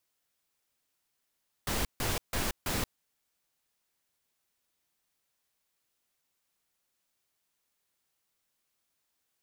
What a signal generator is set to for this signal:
noise bursts pink, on 0.18 s, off 0.15 s, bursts 4, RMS −31 dBFS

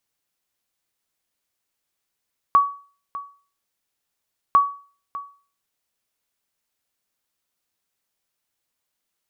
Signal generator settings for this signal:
ping with an echo 1,130 Hz, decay 0.40 s, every 2.00 s, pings 2, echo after 0.60 s, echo −17 dB −7.5 dBFS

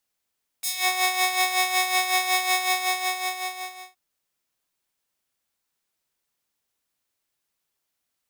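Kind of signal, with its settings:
subtractive patch with tremolo F#5, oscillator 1 square, oscillator 2 saw, interval 0 semitones, oscillator 2 level −18 dB, sub −2.5 dB, noise −12 dB, filter highpass, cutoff 980 Hz, Q 0.81, filter envelope 3 octaves, filter decay 0.24 s, filter sustain 10%, attack 10 ms, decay 0.08 s, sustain −3 dB, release 1.39 s, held 1.93 s, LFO 5.4 Hz, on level 8.5 dB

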